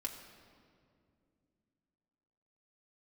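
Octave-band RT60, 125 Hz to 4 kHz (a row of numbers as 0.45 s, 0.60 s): 3.4 s, 3.5 s, 2.7 s, 2.0 s, 1.7 s, 1.4 s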